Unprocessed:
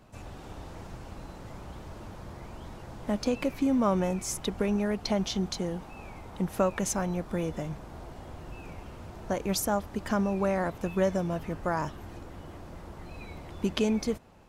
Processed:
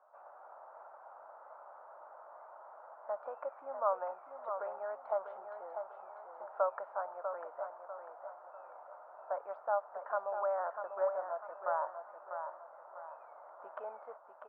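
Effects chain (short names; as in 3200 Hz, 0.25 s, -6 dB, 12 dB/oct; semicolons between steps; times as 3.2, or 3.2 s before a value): elliptic band-pass 590–1400 Hz, stop band 70 dB; on a send: feedback echo 0.646 s, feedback 39%, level -7.5 dB; on the sum: gain -2.5 dB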